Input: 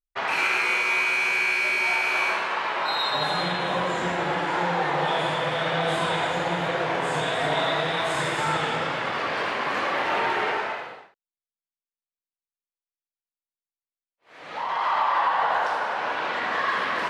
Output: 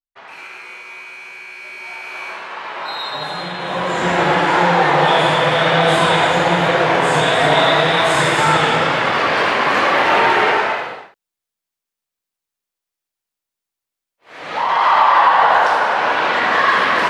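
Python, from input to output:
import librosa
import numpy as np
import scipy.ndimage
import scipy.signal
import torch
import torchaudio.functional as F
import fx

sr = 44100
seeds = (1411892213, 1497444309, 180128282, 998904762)

y = fx.gain(x, sr, db=fx.line((1.48, -11.5), (2.84, 0.0), (3.52, 0.0), (4.19, 11.0)))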